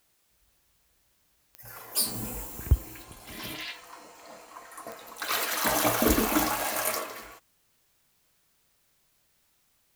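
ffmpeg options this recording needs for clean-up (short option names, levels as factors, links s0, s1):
-af "adeclick=t=4,agate=range=0.0891:threshold=0.000891"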